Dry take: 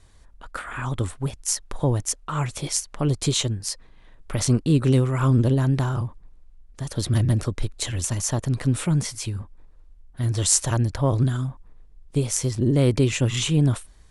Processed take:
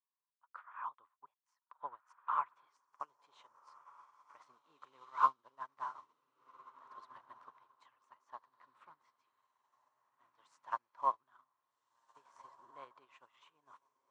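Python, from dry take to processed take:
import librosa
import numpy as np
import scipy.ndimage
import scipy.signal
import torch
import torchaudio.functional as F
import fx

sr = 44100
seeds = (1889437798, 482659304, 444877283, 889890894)

y = fx.ladder_bandpass(x, sr, hz=1100.0, resonance_pct=75)
y = fx.echo_diffused(y, sr, ms=1602, feedback_pct=41, wet_db=-5.0)
y = fx.upward_expand(y, sr, threshold_db=-52.0, expansion=2.5)
y = F.gain(torch.from_numpy(y), 6.0).numpy()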